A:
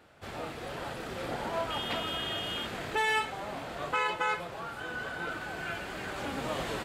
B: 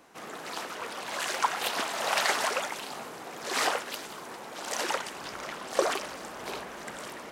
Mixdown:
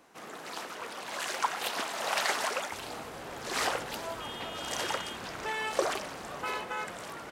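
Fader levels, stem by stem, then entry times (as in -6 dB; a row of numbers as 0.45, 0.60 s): -6.5, -3.0 dB; 2.50, 0.00 s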